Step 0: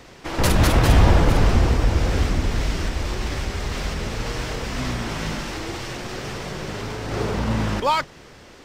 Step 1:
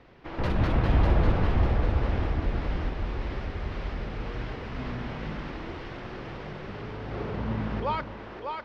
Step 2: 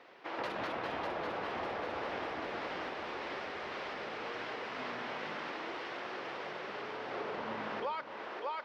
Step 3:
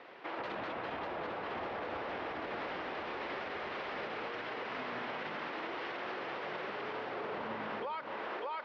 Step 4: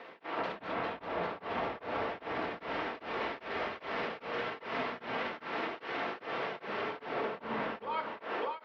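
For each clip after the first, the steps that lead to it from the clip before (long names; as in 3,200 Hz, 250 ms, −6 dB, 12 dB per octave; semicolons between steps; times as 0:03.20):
high-frequency loss of the air 320 metres; echo with a time of its own for lows and highs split 310 Hz, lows 168 ms, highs 597 ms, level −5 dB; level −8 dB
high-pass filter 490 Hz 12 dB per octave; downward compressor 6 to 1, threshold −36 dBFS, peak gain reduction 10.5 dB; level +1.5 dB
low-pass filter 4,000 Hz 12 dB per octave; brickwall limiter −36 dBFS, peak gain reduction 9.5 dB; level +4.5 dB
rectangular room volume 520 cubic metres, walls furnished, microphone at 1.6 metres; tremolo along a rectified sine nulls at 2.5 Hz; level +3.5 dB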